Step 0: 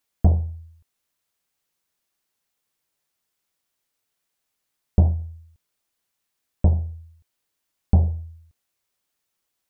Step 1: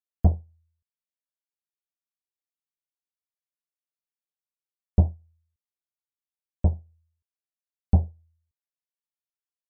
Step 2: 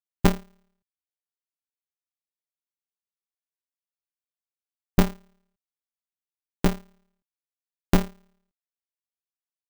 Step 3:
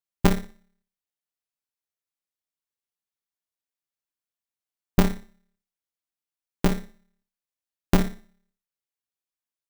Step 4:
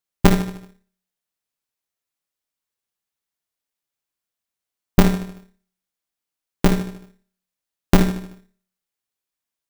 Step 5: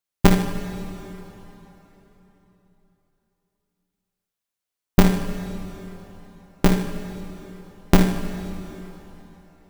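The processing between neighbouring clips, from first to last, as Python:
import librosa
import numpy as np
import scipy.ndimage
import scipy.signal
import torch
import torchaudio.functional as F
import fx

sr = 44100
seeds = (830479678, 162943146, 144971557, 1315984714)

y1 = fx.upward_expand(x, sr, threshold_db=-28.0, expansion=2.5)
y2 = y1 * np.sign(np.sin(2.0 * np.pi * 100.0 * np.arange(len(y1)) / sr))
y3 = fx.room_flutter(y2, sr, wall_m=10.2, rt60_s=0.36)
y4 = fx.echo_feedback(y3, sr, ms=76, feedback_pct=48, wet_db=-10.5)
y4 = y4 * 10.0 ** (5.5 / 20.0)
y5 = fx.rev_plate(y4, sr, seeds[0], rt60_s=3.8, hf_ratio=0.85, predelay_ms=0, drr_db=8.5)
y5 = y5 * 10.0 ** (-1.0 / 20.0)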